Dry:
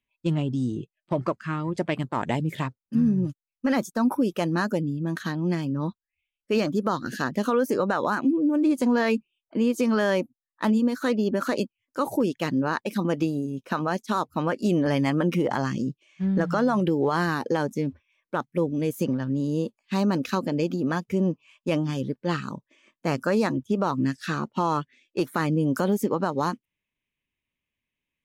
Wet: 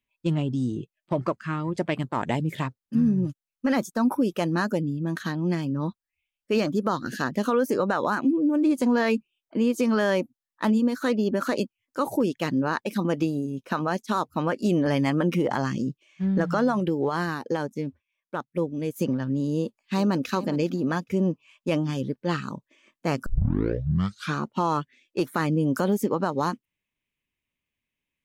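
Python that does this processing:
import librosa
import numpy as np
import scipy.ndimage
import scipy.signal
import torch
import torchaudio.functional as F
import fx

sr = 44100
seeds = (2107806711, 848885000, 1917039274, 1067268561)

y = fx.upward_expand(x, sr, threshold_db=-41.0, expansion=1.5, at=(16.71, 18.95), fade=0.02)
y = fx.echo_throw(y, sr, start_s=19.56, length_s=0.72, ms=410, feedback_pct=15, wet_db=-15.5)
y = fx.edit(y, sr, fx.tape_start(start_s=23.26, length_s=1.11), tone=tone)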